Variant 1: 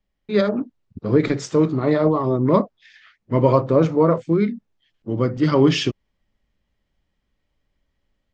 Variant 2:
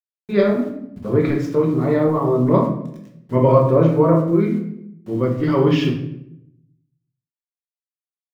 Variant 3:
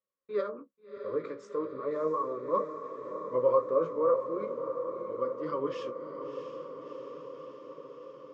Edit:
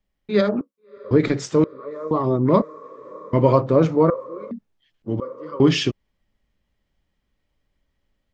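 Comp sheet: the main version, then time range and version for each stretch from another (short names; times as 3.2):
1
0.61–1.11 from 3
1.64–2.11 from 3
2.62–3.33 from 3
4.1–4.51 from 3
5.2–5.6 from 3
not used: 2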